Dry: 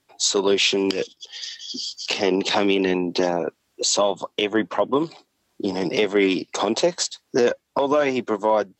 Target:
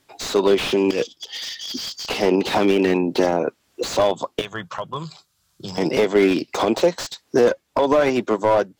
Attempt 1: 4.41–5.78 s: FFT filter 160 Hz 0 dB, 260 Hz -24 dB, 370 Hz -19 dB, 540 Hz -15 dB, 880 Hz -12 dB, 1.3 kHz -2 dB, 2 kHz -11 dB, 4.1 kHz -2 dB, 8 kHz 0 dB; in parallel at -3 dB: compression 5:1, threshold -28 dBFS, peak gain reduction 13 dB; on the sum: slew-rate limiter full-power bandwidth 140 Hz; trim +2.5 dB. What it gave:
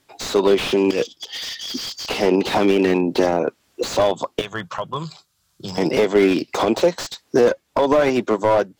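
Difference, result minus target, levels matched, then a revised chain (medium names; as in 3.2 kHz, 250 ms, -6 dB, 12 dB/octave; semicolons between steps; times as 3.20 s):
compression: peak gain reduction -9 dB
4.41–5.78 s: FFT filter 160 Hz 0 dB, 260 Hz -24 dB, 370 Hz -19 dB, 540 Hz -15 dB, 880 Hz -12 dB, 1.3 kHz -2 dB, 2 kHz -11 dB, 4.1 kHz -2 dB, 8 kHz 0 dB; in parallel at -3 dB: compression 5:1, threshold -39.5 dBFS, peak gain reduction 22 dB; on the sum: slew-rate limiter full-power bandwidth 140 Hz; trim +2.5 dB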